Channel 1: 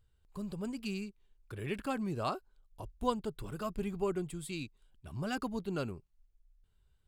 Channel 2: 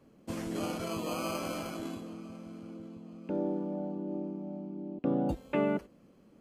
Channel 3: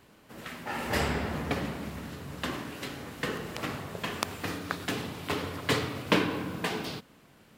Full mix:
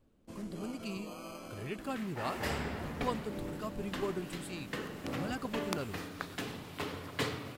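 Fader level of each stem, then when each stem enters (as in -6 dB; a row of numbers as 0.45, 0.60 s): -3.0, -11.0, -7.0 dB; 0.00, 0.00, 1.50 s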